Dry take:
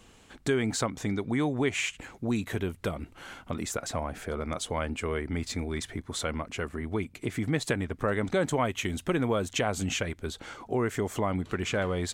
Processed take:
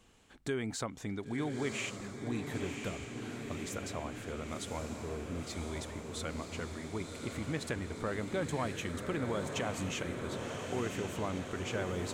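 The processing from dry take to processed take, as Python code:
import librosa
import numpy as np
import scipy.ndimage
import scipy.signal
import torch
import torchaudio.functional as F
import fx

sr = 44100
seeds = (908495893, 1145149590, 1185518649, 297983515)

y = fx.gaussian_blur(x, sr, sigma=8.7, at=(4.78, 5.42))
y = fx.echo_diffused(y, sr, ms=1037, feedback_pct=67, wet_db=-5.0)
y = F.gain(torch.from_numpy(y), -8.5).numpy()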